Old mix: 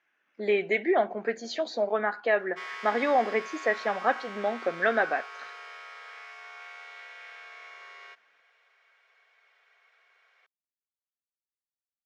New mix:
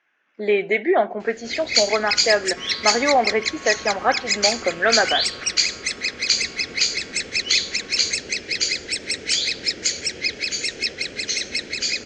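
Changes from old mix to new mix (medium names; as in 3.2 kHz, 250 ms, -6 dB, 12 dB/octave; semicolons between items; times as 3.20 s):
speech +6.0 dB; first sound: unmuted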